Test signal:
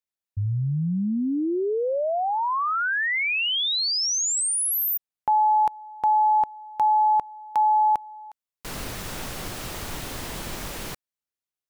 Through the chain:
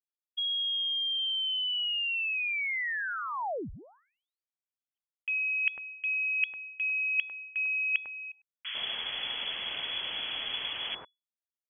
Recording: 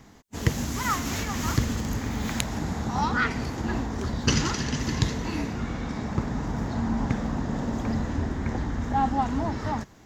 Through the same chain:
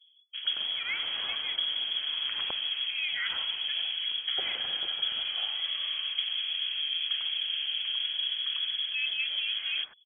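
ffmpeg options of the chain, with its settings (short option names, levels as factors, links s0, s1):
-filter_complex "[0:a]anlmdn=0.631,equalizer=f=70:w=4.1:g=5,areverse,acompressor=threshold=0.02:ratio=4:attack=47:release=261:knee=6:detection=peak,areverse,lowpass=f=2900:t=q:w=0.5098,lowpass=f=2900:t=q:w=0.6013,lowpass=f=2900:t=q:w=0.9,lowpass=f=2900:t=q:w=2.563,afreqshift=-3400,acrossover=split=1300[s0][s1];[s0]adelay=100[s2];[s2][s1]amix=inputs=2:normalize=0,volume=1.26"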